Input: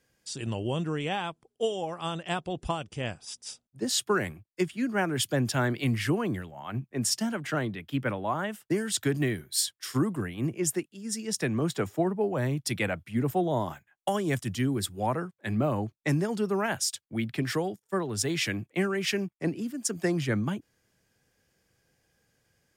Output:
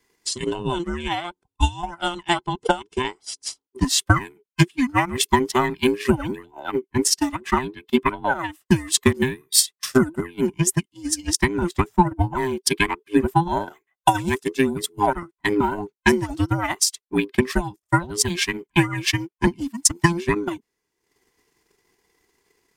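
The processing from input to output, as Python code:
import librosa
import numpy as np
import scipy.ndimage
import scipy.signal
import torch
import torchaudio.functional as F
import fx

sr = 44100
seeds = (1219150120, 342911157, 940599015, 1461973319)

y = fx.band_invert(x, sr, width_hz=500)
y = fx.transient(y, sr, attack_db=10, sustain_db=-11)
y = fx.low_shelf(y, sr, hz=340.0, db=-3.5)
y = y * librosa.db_to_amplitude(5.0)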